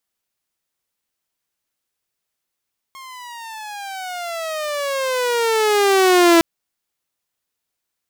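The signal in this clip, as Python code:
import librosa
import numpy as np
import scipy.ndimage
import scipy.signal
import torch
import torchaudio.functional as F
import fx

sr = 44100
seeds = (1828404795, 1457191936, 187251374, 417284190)

y = fx.riser_tone(sr, length_s=3.46, level_db=-6.0, wave='saw', hz=1080.0, rise_st=-20.5, swell_db=26.5)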